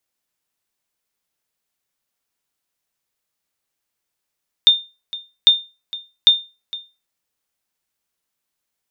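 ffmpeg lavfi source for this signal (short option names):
-f lavfi -i "aevalsrc='0.75*(sin(2*PI*3620*mod(t,0.8))*exp(-6.91*mod(t,0.8)/0.28)+0.119*sin(2*PI*3620*max(mod(t,0.8)-0.46,0))*exp(-6.91*max(mod(t,0.8)-0.46,0)/0.28))':d=2.4:s=44100"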